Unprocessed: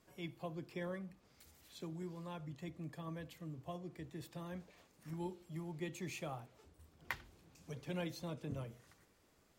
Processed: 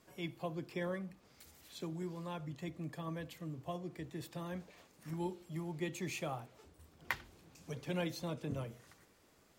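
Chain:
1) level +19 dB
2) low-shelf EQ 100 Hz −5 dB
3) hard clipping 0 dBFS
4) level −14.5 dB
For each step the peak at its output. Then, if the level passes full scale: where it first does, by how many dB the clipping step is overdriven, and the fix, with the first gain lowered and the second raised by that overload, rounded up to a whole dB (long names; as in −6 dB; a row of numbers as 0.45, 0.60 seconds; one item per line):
−3.0, −3.0, −3.0, −17.5 dBFS
no step passes full scale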